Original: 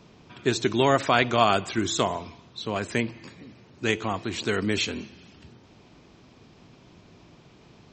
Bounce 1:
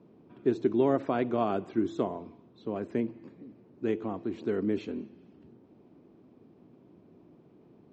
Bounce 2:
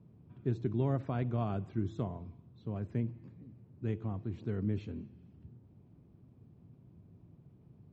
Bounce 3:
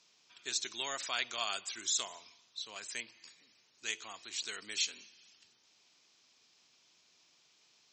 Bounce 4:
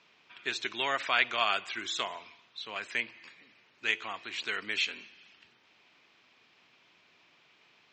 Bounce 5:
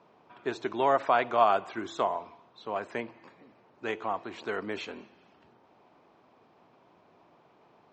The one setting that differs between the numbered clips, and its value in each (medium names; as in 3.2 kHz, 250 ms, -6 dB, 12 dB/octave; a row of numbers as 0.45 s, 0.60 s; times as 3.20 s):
band-pass filter, frequency: 310 Hz, 110 Hz, 6.4 kHz, 2.4 kHz, 830 Hz